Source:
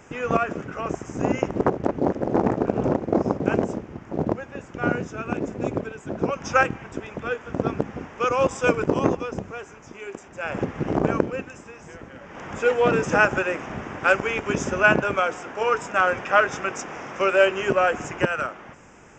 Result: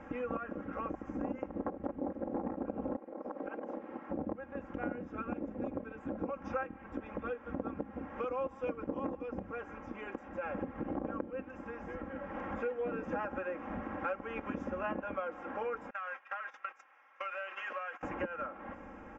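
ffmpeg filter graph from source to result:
ffmpeg -i in.wav -filter_complex "[0:a]asettb=1/sr,asplit=3[link_01][link_02][link_03];[link_01]atrim=end=2.964[link_04];[link_02]atrim=start=2.96:end=4.1,asetpts=PTS-STARTPTS,afade=type=in:duration=0.004:curve=qsin,afade=type=out:start_time=1.136:duration=0.004:curve=qsin,highpass=380,lowpass=6000,acompressor=threshold=-31dB:ratio=10:attack=3.2:release=140:knee=1:detection=peak[link_05];[link_03]atrim=start=4.096[link_06];[link_04][link_05]acrossfade=duration=0.004:curve1=hsin:curve2=qsin[link_07];[link_07][link_06]acrossfade=duration=0.004:curve1=qsin:curve2=hsin,asettb=1/sr,asplit=3[link_08][link_09][link_10];[link_08]atrim=end=15.904[link_11];[link_09]atrim=start=15.9:end=18.03,asetpts=PTS-STARTPTS,afade=type=in:duration=0.004:curve=qsin,afade=type=out:start_time=2.126:duration=0.004:curve=qsin,agate=range=-19dB:threshold=-30dB:ratio=16:release=100:detection=peak,highpass=1500,acompressor=threshold=-29dB:ratio=6:attack=3.2:release=140:knee=1:detection=peak[link_12];[link_10]atrim=start=18.026[link_13];[link_11][link_12]acrossfade=duration=0.004:curve1=hsin:curve2=qsin[link_14];[link_14][link_13]acrossfade=duration=0.004:curve1=qsin:curve2=hsin,lowpass=1600,aecho=1:1:3.7:0.86,acompressor=threshold=-36dB:ratio=4,volume=-1.5dB" out.wav

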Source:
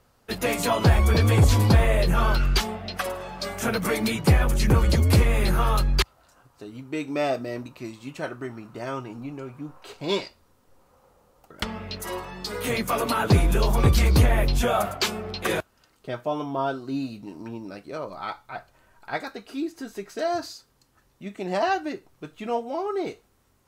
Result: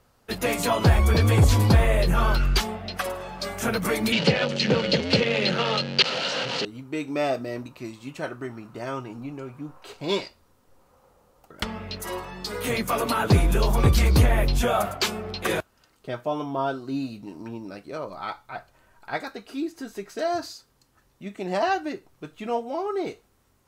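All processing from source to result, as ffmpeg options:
ffmpeg -i in.wav -filter_complex "[0:a]asettb=1/sr,asplit=3[link_01][link_02][link_03];[link_01]atrim=end=4.124[link_04];[link_02]atrim=start=4.12:end=6.65,asetpts=PTS-STARTPTS,afade=type=in:duration=0.004:curve=qsin,afade=type=out:start_time=2.526:duration=0.004:curve=qsin,aeval=exprs='val(0)+0.5*0.0841*sgn(val(0))':channel_layout=same,highpass=frequency=160:width=0.5412,highpass=frequency=160:width=1.3066,equalizer=frequency=340:width_type=q:width=4:gain=-7,equalizer=frequency=510:width_type=q:width=4:gain=8,equalizer=frequency=730:width_type=q:width=4:gain=-4,equalizer=frequency=1100:width_type=q:width=4:gain=-9,equalizer=frequency=2900:width_type=q:width=4:gain=9,equalizer=frequency=4300:width_type=q:width=4:gain=7,lowpass=frequency=5500:width=0.5412,lowpass=frequency=5500:width=1.3066[link_05];[link_03]atrim=start=6.646[link_06];[link_04][link_05]acrossfade=duration=0.004:curve1=hsin:curve2=qsin[link_07];[link_07][link_06]acrossfade=duration=0.004:curve1=qsin:curve2=hsin" out.wav

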